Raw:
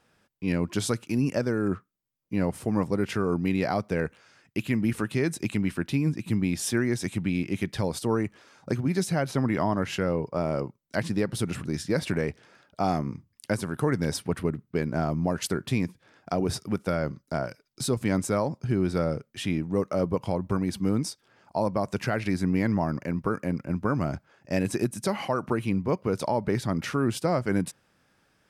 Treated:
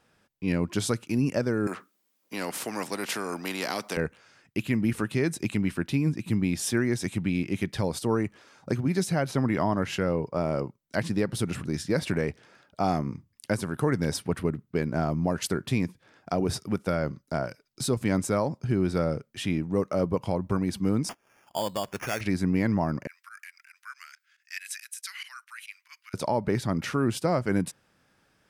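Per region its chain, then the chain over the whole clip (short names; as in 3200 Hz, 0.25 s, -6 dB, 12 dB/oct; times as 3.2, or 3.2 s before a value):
1.67–3.97 HPF 230 Hz 24 dB/oct + spectral compressor 2:1
21.09–22.21 low shelf 410 Hz -10 dB + sample-rate reducer 4000 Hz
23.07–26.14 steep high-pass 1600 Hz + high shelf 11000 Hz +5.5 dB + pump 139 bpm, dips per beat 2, -19 dB, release 68 ms
whole clip: dry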